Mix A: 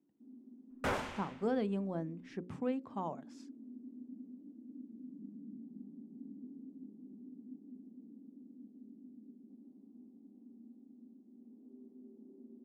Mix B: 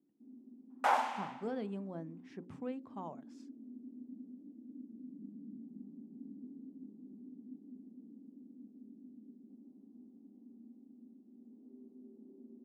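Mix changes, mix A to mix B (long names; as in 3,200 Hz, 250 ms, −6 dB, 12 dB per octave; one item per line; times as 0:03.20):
speech −5.5 dB
second sound: add high-pass with resonance 810 Hz, resonance Q 4.8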